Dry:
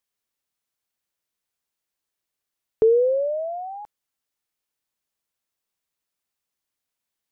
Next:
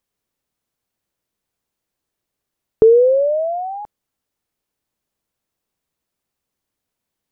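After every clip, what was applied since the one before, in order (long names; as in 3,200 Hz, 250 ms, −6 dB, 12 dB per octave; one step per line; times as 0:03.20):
tilt shelving filter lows +5.5 dB, about 780 Hz
in parallel at −2.5 dB: downward compressor, threshold −24 dBFS, peak gain reduction 12 dB
on the sum: level +2.5 dB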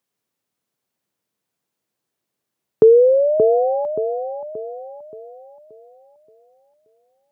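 high-pass filter 110 Hz 24 dB per octave
delay with a low-pass on its return 577 ms, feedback 41%, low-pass 840 Hz, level −5.5 dB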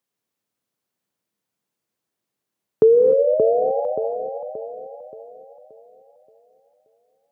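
reverb whose tail is shaped and stops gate 320 ms rising, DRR 7 dB
level −3 dB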